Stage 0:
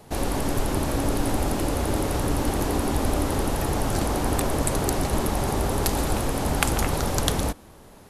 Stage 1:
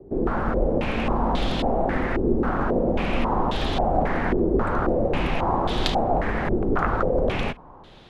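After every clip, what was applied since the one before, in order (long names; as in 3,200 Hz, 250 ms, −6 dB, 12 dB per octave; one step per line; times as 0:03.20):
frequency shifter −53 Hz
low-pass on a step sequencer 3.7 Hz 390–3,500 Hz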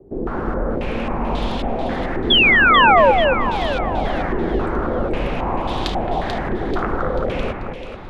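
sound drawn into the spectrogram fall, 0:02.30–0:03.12, 490–3,500 Hz −12 dBFS
on a send: delay that swaps between a low-pass and a high-pass 219 ms, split 2,000 Hz, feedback 66%, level −3.5 dB
on the sum: level −1 dB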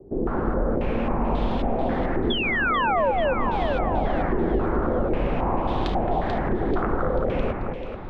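downward compressor 6 to 1, threshold −17 dBFS, peak gain reduction 9 dB
low-pass filter 1,300 Hz 6 dB per octave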